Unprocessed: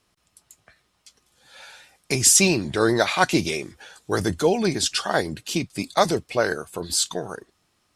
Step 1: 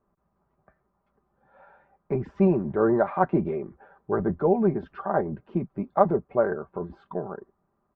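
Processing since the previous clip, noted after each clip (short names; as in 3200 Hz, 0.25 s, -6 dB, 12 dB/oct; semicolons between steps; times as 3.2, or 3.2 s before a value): LPF 1200 Hz 24 dB/oct; comb 5.1 ms, depth 50%; gain -2 dB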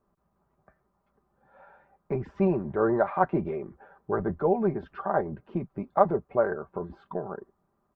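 dynamic EQ 230 Hz, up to -5 dB, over -34 dBFS, Q 0.76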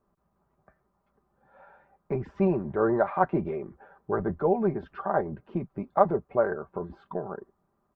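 nothing audible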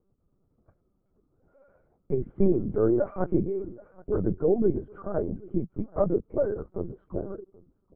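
running mean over 49 samples; echo 0.778 s -22.5 dB; LPC vocoder at 8 kHz pitch kept; gain +5 dB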